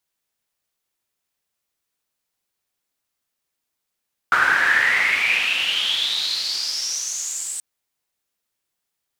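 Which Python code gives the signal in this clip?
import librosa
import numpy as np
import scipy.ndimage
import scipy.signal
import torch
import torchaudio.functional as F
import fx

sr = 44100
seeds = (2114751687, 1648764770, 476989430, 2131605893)

y = fx.riser_noise(sr, seeds[0], length_s=3.28, colour='pink', kind='bandpass', start_hz=1400.0, end_hz=8200.0, q=8.9, swell_db=-12.0, law='exponential')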